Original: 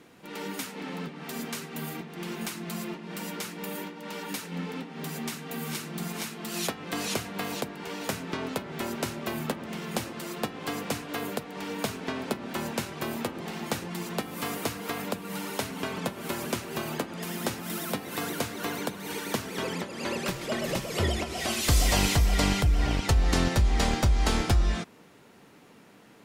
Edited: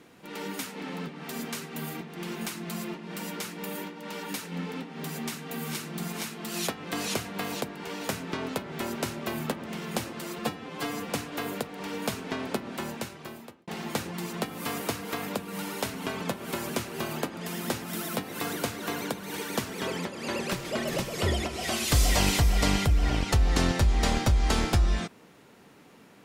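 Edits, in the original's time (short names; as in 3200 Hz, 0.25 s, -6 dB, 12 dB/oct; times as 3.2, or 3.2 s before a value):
10.39–10.86 stretch 1.5×
12.37–13.44 fade out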